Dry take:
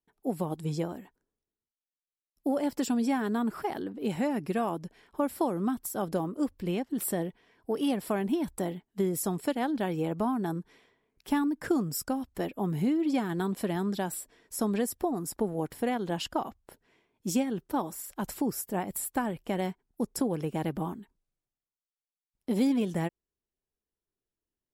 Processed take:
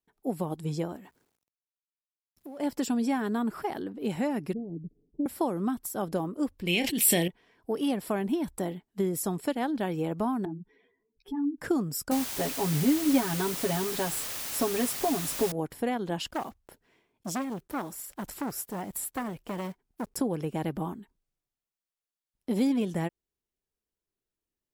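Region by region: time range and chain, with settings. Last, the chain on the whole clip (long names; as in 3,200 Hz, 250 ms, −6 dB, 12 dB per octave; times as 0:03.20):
0:00.96–0:02.60: mu-law and A-law mismatch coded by mu + high-pass filter 60 Hz + downward compressor 2.5 to 1, threshold −48 dBFS
0:04.53–0:05.26: inverse Chebyshev low-pass filter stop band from 1,200 Hz, stop band 60 dB + comb filter 6.9 ms, depth 39%
0:06.67–0:07.28: high shelf with overshoot 1,800 Hz +10.5 dB, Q 3 + double-tracking delay 29 ms −14 dB + level that may fall only so fast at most 35 dB per second
0:10.45–0:11.58: expanding power law on the bin magnitudes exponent 2.2 + string-ensemble chorus
0:12.11–0:15.52: comb filter 7.3 ms, depth 87% + bit-depth reduction 6 bits, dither triangular
0:16.26–0:20.19: one scale factor per block 5 bits + saturating transformer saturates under 1,100 Hz
whole clip: no processing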